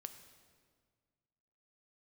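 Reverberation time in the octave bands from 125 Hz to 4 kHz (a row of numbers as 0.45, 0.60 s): 2.2, 2.1, 1.8, 1.7, 1.5, 1.4 s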